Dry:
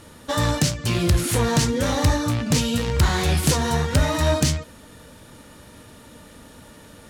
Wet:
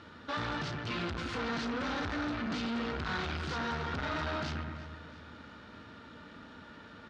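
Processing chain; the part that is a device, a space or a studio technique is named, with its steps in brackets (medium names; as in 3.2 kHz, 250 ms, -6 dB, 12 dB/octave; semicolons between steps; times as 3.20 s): 0.90–2.92 s: comb 3.9 ms, depth 62%; analogue delay pedal into a guitar amplifier (bucket-brigade echo 125 ms, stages 2048, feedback 51%, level -10 dB; valve stage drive 29 dB, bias 0.5; cabinet simulation 81–4500 Hz, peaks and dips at 130 Hz -6 dB, 540 Hz -5 dB, 1.4 kHz +9 dB); feedback delay 338 ms, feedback 59%, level -18.5 dB; trim -3.5 dB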